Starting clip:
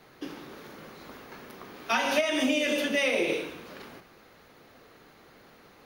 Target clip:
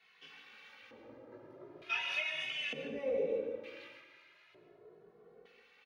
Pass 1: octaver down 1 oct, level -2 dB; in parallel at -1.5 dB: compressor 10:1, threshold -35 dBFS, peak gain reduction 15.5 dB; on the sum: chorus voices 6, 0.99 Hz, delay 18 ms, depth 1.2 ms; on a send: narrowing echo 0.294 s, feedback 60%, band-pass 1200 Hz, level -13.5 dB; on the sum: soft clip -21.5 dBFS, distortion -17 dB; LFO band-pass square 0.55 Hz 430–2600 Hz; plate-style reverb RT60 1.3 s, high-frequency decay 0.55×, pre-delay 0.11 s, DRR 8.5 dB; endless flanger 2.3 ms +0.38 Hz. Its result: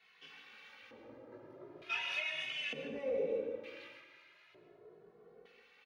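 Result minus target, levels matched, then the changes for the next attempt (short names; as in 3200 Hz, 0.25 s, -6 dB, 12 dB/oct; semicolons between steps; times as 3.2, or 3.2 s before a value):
soft clip: distortion +12 dB
change: soft clip -13.5 dBFS, distortion -29 dB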